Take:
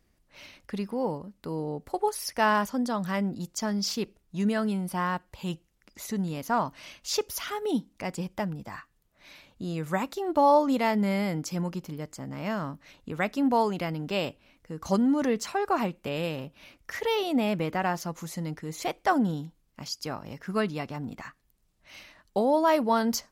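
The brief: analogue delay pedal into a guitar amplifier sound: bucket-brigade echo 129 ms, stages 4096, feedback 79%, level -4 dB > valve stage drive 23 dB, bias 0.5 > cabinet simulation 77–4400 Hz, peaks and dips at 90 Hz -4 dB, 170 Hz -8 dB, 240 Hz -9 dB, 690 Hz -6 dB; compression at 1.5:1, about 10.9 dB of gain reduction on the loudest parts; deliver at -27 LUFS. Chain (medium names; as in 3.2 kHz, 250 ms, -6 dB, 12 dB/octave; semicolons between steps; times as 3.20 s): compression 1.5:1, threshold -48 dBFS; bucket-brigade echo 129 ms, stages 4096, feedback 79%, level -4 dB; valve stage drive 23 dB, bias 0.5; cabinet simulation 77–4400 Hz, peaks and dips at 90 Hz -4 dB, 170 Hz -8 dB, 240 Hz -9 dB, 690 Hz -6 dB; trim +13.5 dB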